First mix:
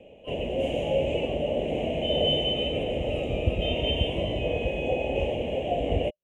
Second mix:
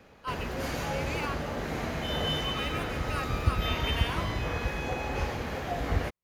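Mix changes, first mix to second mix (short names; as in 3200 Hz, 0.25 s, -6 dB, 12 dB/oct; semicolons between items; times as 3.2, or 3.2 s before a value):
speech +6.0 dB; master: remove EQ curve 130 Hz 0 dB, 420 Hz +7 dB, 600 Hz +13 dB, 1400 Hz -29 dB, 2900 Hz +11 dB, 4500 Hz -28 dB, 8000 Hz -4 dB, 13000 Hz -24 dB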